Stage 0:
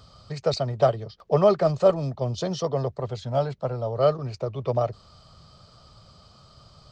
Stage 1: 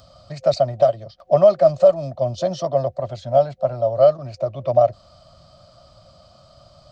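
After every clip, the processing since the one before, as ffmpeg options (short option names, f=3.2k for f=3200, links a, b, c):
-filter_complex "[0:a]superequalizer=7b=0.398:8b=3.55,acrossover=split=3100[a][b];[a]alimiter=limit=-4dB:level=0:latency=1:release=354[c];[b]acompressor=mode=upward:threshold=-58dB:ratio=2.5[d];[c][d]amix=inputs=2:normalize=0"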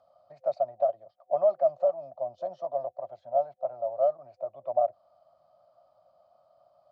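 -af "bandpass=f=760:t=q:w=3:csg=0,volume=-6.5dB"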